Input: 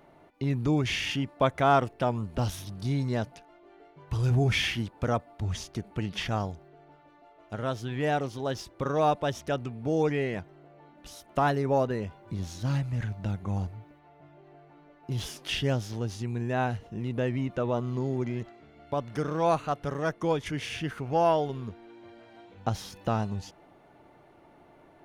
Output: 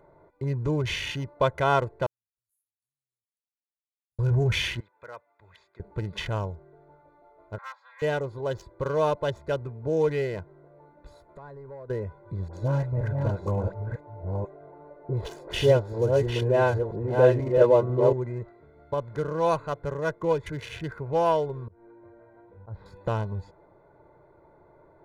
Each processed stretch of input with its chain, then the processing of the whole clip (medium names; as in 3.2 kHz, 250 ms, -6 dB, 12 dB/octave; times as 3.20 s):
2.06–4.19 s: inverse Chebyshev high-pass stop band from 2.3 kHz, stop band 80 dB + tilt EQ -2 dB/octave
4.80–5.80 s: band-pass filter 4.3 kHz, Q 0.82 + resonant high shelf 3.6 kHz -9.5 dB, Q 1.5
7.58–8.02 s: comb filter that takes the minimum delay 3.7 ms + steep high-pass 920 Hz + distance through air 180 m
11.11–11.90 s: compression 4:1, threshold -42 dBFS + hard clipper -39 dBFS
12.48–18.13 s: chunks repeated in reverse 492 ms, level -3.5 dB + peaking EQ 530 Hz +10 dB 1.8 oct + phase dispersion highs, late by 54 ms, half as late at 1.3 kHz
21.67–22.86 s: slow attack 164 ms + distance through air 450 m
whole clip: local Wiener filter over 15 samples; band-stop 5.1 kHz, Q 15; comb 2 ms, depth 65%